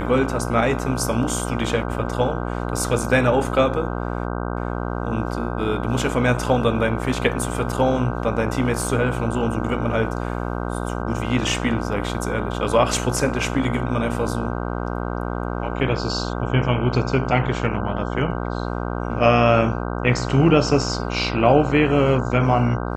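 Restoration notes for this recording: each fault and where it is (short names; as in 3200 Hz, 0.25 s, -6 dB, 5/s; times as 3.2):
buzz 60 Hz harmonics 26 -26 dBFS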